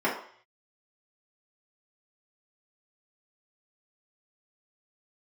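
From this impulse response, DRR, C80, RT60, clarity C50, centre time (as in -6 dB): -7.5 dB, 10.0 dB, 0.55 s, 6.0 dB, 31 ms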